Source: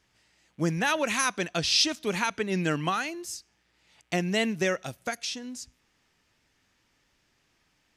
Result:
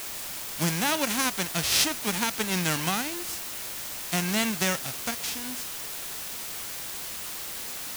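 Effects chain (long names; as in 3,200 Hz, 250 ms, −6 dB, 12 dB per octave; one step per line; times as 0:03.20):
spectral envelope flattened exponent 0.3
bit-depth reduction 6 bits, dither triangular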